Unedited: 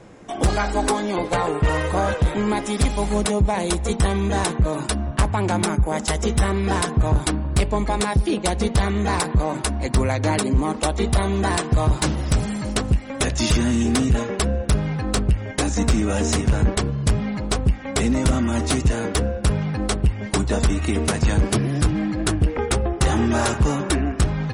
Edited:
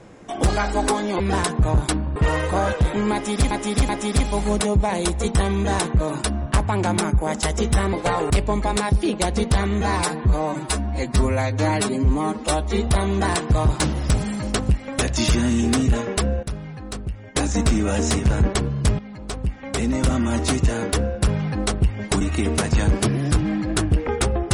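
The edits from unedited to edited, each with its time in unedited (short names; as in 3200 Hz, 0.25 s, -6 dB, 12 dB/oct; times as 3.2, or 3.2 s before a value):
1.2–1.57 swap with 6.58–7.54
2.54–2.92 loop, 3 plays
9.05–11.09 stretch 1.5×
14.65–15.57 gain -10 dB
17.21–18.43 fade in, from -14 dB
20.43–20.71 cut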